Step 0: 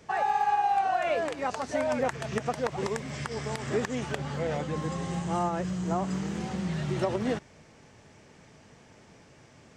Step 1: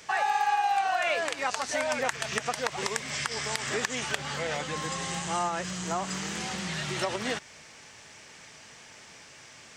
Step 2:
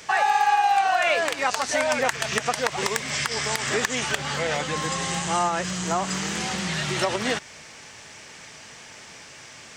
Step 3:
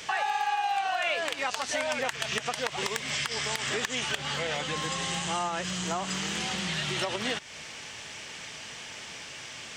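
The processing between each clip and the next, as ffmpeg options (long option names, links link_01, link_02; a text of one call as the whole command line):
ffmpeg -i in.wav -filter_complex "[0:a]tiltshelf=frequency=870:gain=-9.5,asplit=2[link_01][link_02];[link_02]acompressor=threshold=-35dB:ratio=6,volume=-1dB[link_03];[link_01][link_03]amix=inputs=2:normalize=0,volume=-2dB" out.wav
ffmpeg -i in.wav -af "asoftclip=type=hard:threshold=-17dB,volume=6dB" out.wav
ffmpeg -i in.wav -af "equalizer=frequency=3100:width_type=o:width=0.71:gain=6.5,acompressor=threshold=-33dB:ratio=2" out.wav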